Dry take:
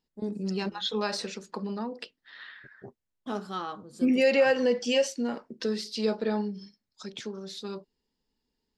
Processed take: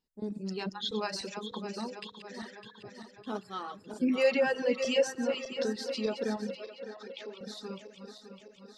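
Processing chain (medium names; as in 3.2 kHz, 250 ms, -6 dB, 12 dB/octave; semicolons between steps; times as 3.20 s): backward echo that repeats 303 ms, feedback 74%, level -7 dB; reverb removal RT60 1.3 s; 6.55–7.41 s: three-band isolator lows -23 dB, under 280 Hz, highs -23 dB, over 4.6 kHz; trim -3.5 dB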